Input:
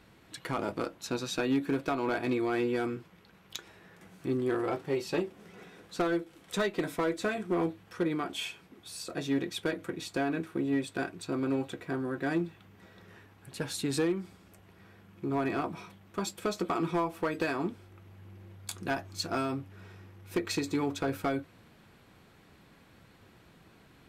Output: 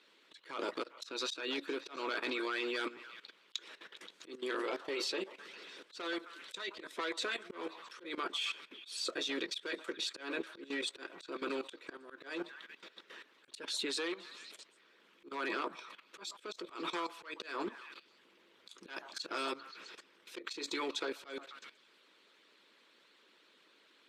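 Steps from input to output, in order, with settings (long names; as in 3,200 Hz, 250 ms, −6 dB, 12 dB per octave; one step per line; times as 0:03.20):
high-pass filter 320 Hz 24 dB per octave
parametric band 3,600 Hz +9 dB 0.99 octaves
on a send: echo through a band-pass that steps 132 ms, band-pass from 870 Hz, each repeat 0.7 octaves, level −10.5 dB
on the sum: harmonic and percussive parts rebalanced harmonic −12 dB
parametric band 740 Hz −12 dB 0.33 octaves
output level in coarse steps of 15 dB
volume swells 186 ms
low-pass filter 8,600 Hz 12 dB per octave
level +8.5 dB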